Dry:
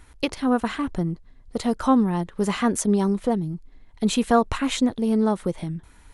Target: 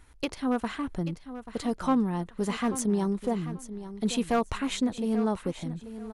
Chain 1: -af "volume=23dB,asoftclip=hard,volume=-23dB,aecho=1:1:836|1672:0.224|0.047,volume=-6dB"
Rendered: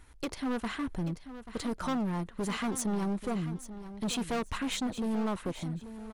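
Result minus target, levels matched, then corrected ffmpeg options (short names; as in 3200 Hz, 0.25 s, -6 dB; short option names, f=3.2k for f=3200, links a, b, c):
overloaded stage: distortion +14 dB
-af "volume=12dB,asoftclip=hard,volume=-12dB,aecho=1:1:836|1672:0.224|0.047,volume=-6dB"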